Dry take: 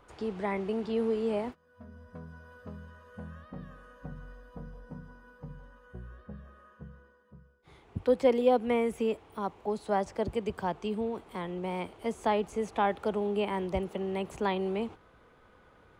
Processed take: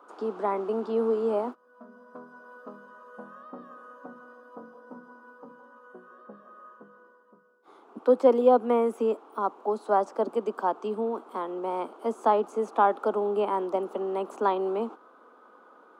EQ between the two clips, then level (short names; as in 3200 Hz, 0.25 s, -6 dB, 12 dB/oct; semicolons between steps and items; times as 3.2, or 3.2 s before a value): steep high-pass 230 Hz 48 dB/oct; resonant high shelf 1600 Hz -7 dB, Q 3; +4.0 dB